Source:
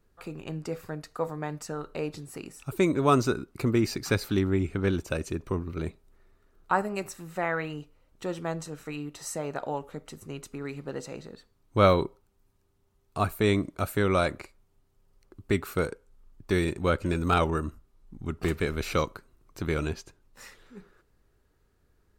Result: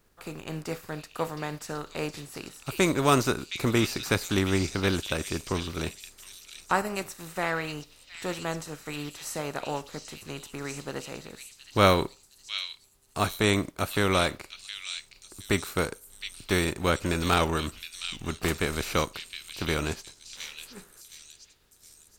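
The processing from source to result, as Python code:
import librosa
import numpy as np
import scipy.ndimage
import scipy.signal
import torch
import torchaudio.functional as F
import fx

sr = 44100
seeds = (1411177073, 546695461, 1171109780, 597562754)

y = fx.spec_flatten(x, sr, power=0.67)
y = fx.echo_stepped(y, sr, ms=716, hz=3700.0, octaves=0.7, feedback_pct=70, wet_db=-2.0)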